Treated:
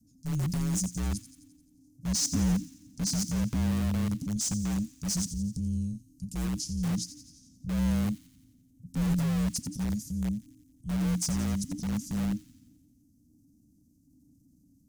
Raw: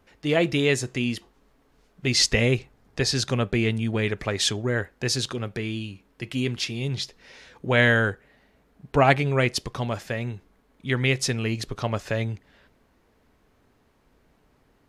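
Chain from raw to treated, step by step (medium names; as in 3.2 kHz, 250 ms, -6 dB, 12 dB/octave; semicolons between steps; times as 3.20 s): elliptic band-stop 220–6200 Hz, stop band 50 dB; peaking EQ 3.8 kHz -9 dB 0.87 oct; in parallel at -8 dB: integer overflow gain 26 dB; on the sum: frequency shift -310 Hz; transient shaper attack -4 dB, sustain +4 dB; on a send: feedback echo behind a high-pass 87 ms, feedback 58%, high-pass 3.6 kHz, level -11.5 dB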